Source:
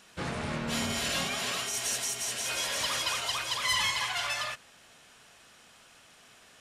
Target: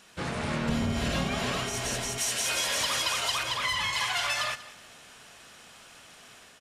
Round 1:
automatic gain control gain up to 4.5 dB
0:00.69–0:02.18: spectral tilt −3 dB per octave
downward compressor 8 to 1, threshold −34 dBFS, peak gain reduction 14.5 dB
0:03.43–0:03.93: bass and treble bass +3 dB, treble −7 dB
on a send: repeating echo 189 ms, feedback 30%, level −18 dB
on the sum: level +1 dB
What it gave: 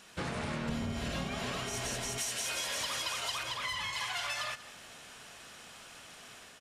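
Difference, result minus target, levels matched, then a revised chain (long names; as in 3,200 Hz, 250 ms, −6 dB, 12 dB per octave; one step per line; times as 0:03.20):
downward compressor: peak gain reduction +7.5 dB
automatic gain control gain up to 4.5 dB
0:00.69–0:02.18: spectral tilt −3 dB per octave
downward compressor 8 to 1, threshold −25.5 dBFS, peak gain reduction 7 dB
0:03.43–0:03.93: bass and treble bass +3 dB, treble −7 dB
on a send: repeating echo 189 ms, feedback 30%, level −18 dB
on the sum: level +1 dB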